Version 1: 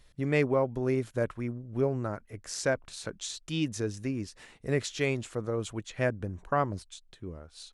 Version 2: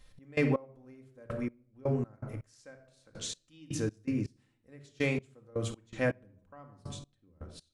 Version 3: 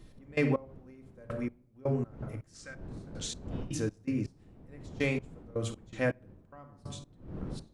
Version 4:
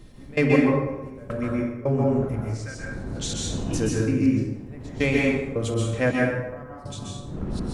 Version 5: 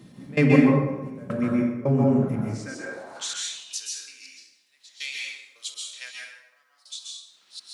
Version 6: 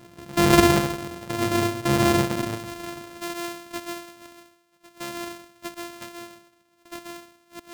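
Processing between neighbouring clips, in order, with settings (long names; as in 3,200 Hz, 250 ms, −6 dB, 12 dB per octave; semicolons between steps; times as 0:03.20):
rectangular room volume 2,400 cubic metres, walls furnished, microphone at 2.1 metres; gate pattern "x.x....x.." 81 BPM −24 dB; level −2 dB
wind on the microphone 210 Hz −47 dBFS; gain on a spectral selection 0:02.55–0:02.75, 1,100–9,500 Hz +10 dB
dense smooth reverb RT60 1 s, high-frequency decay 0.6×, pre-delay 115 ms, DRR −3 dB; level +6.5 dB
high-pass filter sweep 170 Hz → 4,000 Hz, 0:02.57–0:03.74; parametric band 420 Hz −2.5 dB 0.77 octaves
samples sorted by size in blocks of 128 samples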